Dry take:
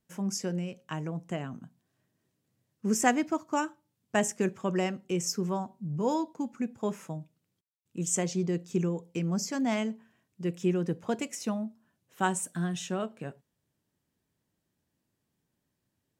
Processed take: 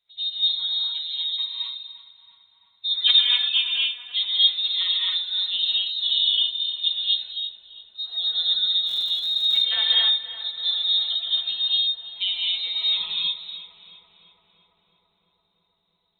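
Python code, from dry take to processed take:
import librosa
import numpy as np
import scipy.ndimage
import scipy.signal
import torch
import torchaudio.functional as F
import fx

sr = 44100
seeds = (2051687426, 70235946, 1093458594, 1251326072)

y = fx.hpss_only(x, sr, part='harmonic')
y = fx.freq_invert(y, sr, carrier_hz=3900)
y = fx.rev_gated(y, sr, seeds[0], gate_ms=290, shape='rising', drr_db=-4.0)
y = fx.dmg_crackle(y, sr, seeds[1], per_s=310.0, level_db=-35.0, at=(8.86, 9.63), fade=0.02)
y = fx.echo_filtered(y, sr, ms=336, feedback_pct=82, hz=2100.0, wet_db=-11)
y = y * 10.0 ** (2.5 / 20.0)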